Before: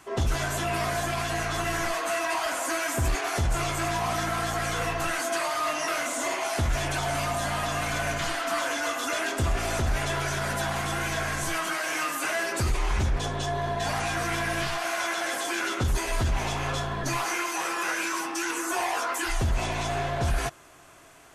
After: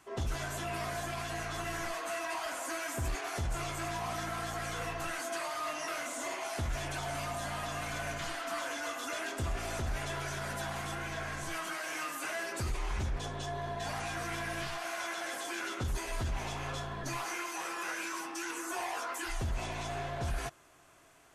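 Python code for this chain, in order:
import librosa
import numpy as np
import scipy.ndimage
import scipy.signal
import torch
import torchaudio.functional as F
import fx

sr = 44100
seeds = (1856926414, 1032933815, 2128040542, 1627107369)

y = fx.high_shelf(x, sr, hz=fx.line((10.94, 4800.0), (11.5, 9200.0)), db=-8.0, at=(10.94, 11.5), fade=0.02)
y = y * 10.0 ** (-9.0 / 20.0)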